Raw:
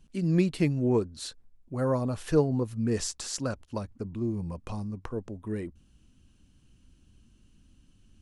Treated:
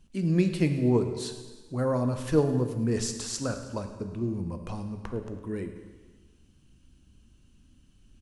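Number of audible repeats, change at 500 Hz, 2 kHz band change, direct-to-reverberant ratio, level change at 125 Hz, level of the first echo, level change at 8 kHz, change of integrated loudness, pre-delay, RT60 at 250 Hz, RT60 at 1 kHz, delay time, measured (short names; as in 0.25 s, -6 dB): 4, +1.0 dB, +1.0 dB, 6.5 dB, +1.0 dB, -16.5 dB, +1.0 dB, +1.0 dB, 6 ms, 1.3 s, 1.4 s, 0.107 s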